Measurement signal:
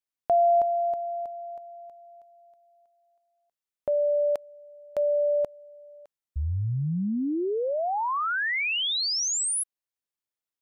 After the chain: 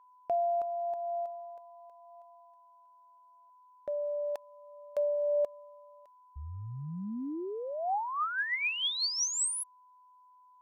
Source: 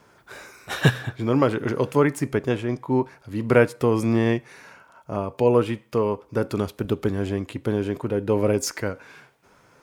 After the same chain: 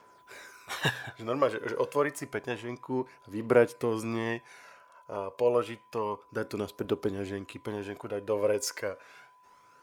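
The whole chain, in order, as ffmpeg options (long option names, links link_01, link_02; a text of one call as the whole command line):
ffmpeg -i in.wav -af "aphaser=in_gain=1:out_gain=1:delay=2.1:decay=0.43:speed=0.29:type=triangular,aeval=exprs='val(0)+0.00282*sin(2*PI*1000*n/s)':channel_layout=same,bass=frequency=250:gain=-12,treble=frequency=4000:gain=1,volume=-6.5dB" out.wav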